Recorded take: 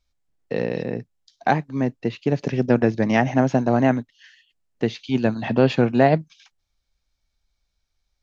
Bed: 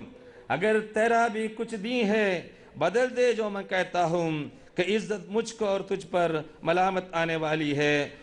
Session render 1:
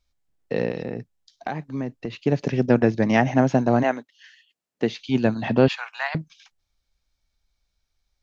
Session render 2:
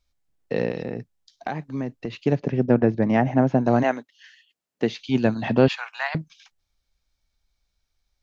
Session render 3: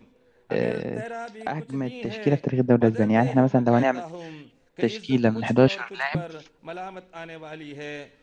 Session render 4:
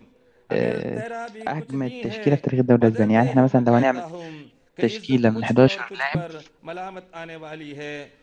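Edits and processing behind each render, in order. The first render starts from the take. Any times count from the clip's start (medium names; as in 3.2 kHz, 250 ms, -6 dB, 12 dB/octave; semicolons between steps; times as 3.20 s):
0.70–2.23 s: compression, threshold -24 dBFS; 3.82–4.98 s: high-pass 500 Hz -> 140 Hz; 5.68–6.15 s: steep high-pass 940 Hz
2.35–3.65 s: low-pass 1.2 kHz 6 dB/octave
add bed -11.5 dB
trim +2.5 dB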